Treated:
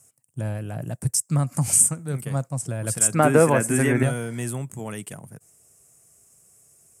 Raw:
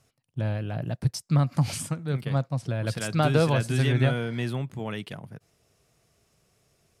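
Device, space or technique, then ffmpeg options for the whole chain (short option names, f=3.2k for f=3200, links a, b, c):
budget condenser microphone: -filter_complex "[0:a]asettb=1/sr,asplit=3[a][b][c];[a]atrim=end=3.144[d];[b]atrim=start=3.14:end=4.03,asetpts=PTS-STARTPTS,afade=t=in:d=0.004:c=qsin,afade=t=out:st=0.886:d=0.004:c=qsin,equalizer=f=125:t=o:w=1:g=-4,equalizer=f=250:t=o:w=1:g=8,equalizer=f=500:t=o:w=1:g=5,equalizer=f=1k:t=o:w=1:g=5,equalizer=f=2k:t=o:w=1:g=10,equalizer=f=4k:t=o:w=1:g=-8,equalizer=f=8k:t=o:w=1:g=-4[e];[c]atrim=start=4.026[f];[d][e]acrossfade=d=0.004:c1=hsin:c2=qsin[g];[g][f]acrossfade=d=0.004:c1=qsin:c2=hsin,highpass=61,highshelf=f=5.8k:t=q:w=3:g=13.5"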